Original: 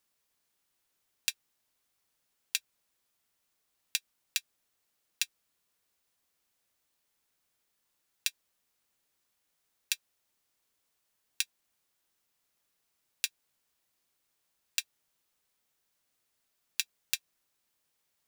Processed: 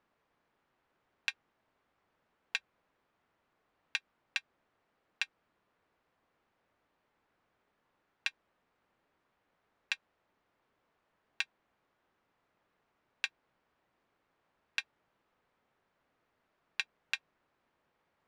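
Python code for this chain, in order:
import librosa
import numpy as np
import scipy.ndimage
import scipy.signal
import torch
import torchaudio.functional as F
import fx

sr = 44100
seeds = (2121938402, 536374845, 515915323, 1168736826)

y = scipy.signal.sosfilt(scipy.signal.butter(2, 1500.0, 'lowpass', fs=sr, output='sos'), x)
y = fx.low_shelf(y, sr, hz=110.0, db=-5.5)
y = y * 10.0 ** (11.5 / 20.0)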